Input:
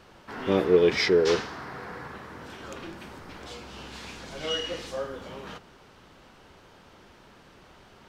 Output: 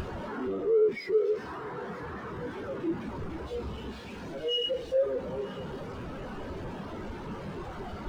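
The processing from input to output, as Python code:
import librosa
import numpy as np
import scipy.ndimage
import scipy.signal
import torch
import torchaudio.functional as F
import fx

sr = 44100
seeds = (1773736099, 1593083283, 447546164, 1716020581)

p1 = np.sign(x) * np.sqrt(np.mean(np.square(x)))
p2 = p1 + fx.echo_alternate(p1, sr, ms=473, hz=1300.0, feedback_pct=68, wet_db=-3, dry=0)
p3 = fx.leveller(p2, sr, passes=5)
p4 = fx.spectral_expand(p3, sr, expansion=2.5)
y = F.gain(torch.from_numpy(p4), 2.5).numpy()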